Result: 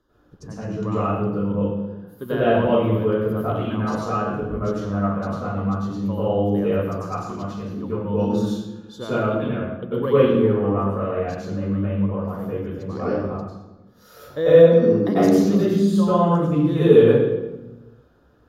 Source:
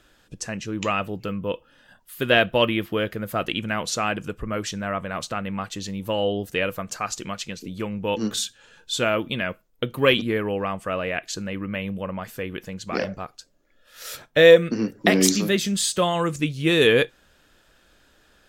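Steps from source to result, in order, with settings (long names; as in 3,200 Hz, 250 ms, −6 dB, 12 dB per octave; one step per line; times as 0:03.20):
flat-topped bell 3,800 Hz −11 dB 2.6 octaves
convolution reverb RT60 1.1 s, pre-delay 84 ms, DRR −11.5 dB
0:02.28–0:03.77: one half of a high-frequency compander encoder only
level −15.5 dB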